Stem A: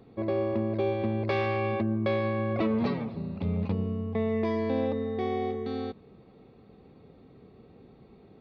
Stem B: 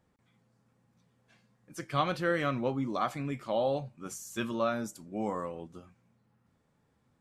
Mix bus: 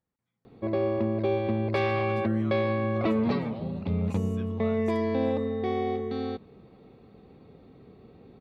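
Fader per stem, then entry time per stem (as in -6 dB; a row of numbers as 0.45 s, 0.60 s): +1.5 dB, -15.0 dB; 0.45 s, 0.00 s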